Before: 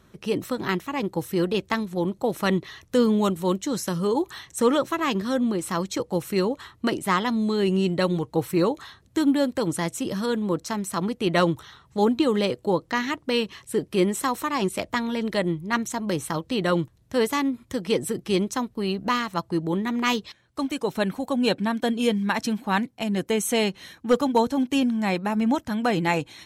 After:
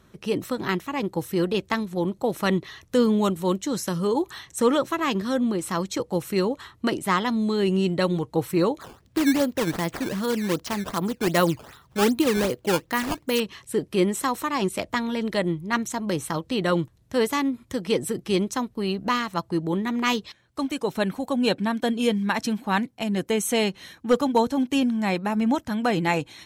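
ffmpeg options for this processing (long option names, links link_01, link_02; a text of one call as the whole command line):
ffmpeg -i in.wav -filter_complex "[0:a]asettb=1/sr,asplit=3[link_01][link_02][link_03];[link_01]atrim=end=8.814[link_04];[link_02]atrim=start=8.81:end=13.4,asetpts=PTS-STARTPTS,afade=type=in:duration=0.004:curve=qsin,afade=type=out:start_time=4.586:duration=0.004:curve=qsin,acrusher=samples=13:mix=1:aa=0.000001:lfo=1:lforange=20.8:lforate=2.6[link_05];[link_03]atrim=start=13.396[link_06];[link_04][link_05]acrossfade=duration=0.004:curve1=hsin:curve2=qsin[link_07];[link_07][link_06]acrossfade=duration=0.004:curve1=qsin:curve2=hsin" out.wav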